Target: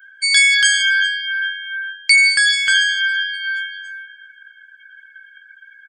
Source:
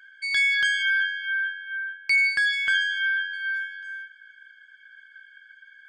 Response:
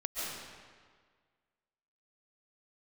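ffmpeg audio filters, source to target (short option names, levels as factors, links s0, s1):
-filter_complex "[0:a]bass=f=250:g=1,treble=f=4000:g=7,asplit=2[s0][s1];[s1]adelay=397,lowpass=f=3300:p=1,volume=0.2,asplit=2[s2][s3];[s3]adelay=397,lowpass=f=3300:p=1,volume=0.5,asplit=2[s4][s5];[s5]adelay=397,lowpass=f=3300:p=1,volume=0.5,asplit=2[s6][s7];[s7]adelay=397,lowpass=f=3300:p=1,volume=0.5,asplit=2[s8][s9];[s9]adelay=397,lowpass=f=3300:p=1,volume=0.5[s10];[s0][s2][s4][s6][s8][s10]amix=inputs=6:normalize=0,afftdn=nr=23:nf=-47,aemphasis=mode=production:type=75kf,volume=1.68"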